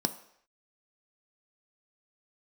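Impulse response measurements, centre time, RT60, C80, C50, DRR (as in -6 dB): 7 ms, not exponential, 17.0 dB, 14.5 dB, 9.0 dB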